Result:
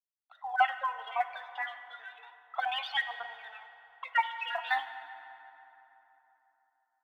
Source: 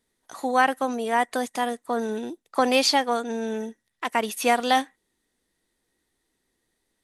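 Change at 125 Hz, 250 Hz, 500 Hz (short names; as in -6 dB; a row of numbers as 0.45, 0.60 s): n/a, under -40 dB, -20.5 dB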